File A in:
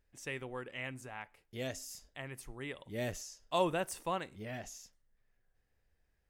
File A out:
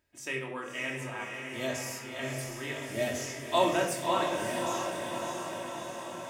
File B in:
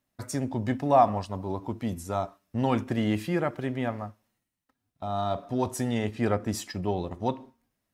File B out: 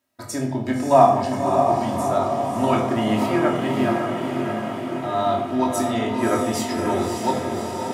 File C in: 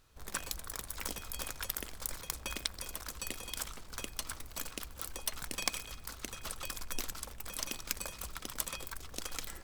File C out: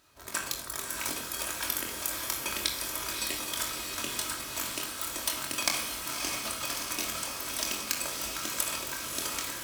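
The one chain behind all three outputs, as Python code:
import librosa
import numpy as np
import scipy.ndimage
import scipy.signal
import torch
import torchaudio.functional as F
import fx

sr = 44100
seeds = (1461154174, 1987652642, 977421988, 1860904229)

p1 = scipy.signal.sosfilt(scipy.signal.butter(2, 68.0, 'highpass', fs=sr, output='sos'), x)
p2 = fx.low_shelf(p1, sr, hz=180.0, db=-11.0)
p3 = fx.doubler(p2, sr, ms=23.0, db=-6.5)
p4 = p3 + fx.echo_diffused(p3, sr, ms=596, feedback_pct=69, wet_db=-4.5, dry=0)
p5 = fx.room_shoebox(p4, sr, seeds[0], volume_m3=2300.0, walls='furnished', distance_m=2.8)
y = F.gain(torch.from_numpy(p5), 3.5).numpy()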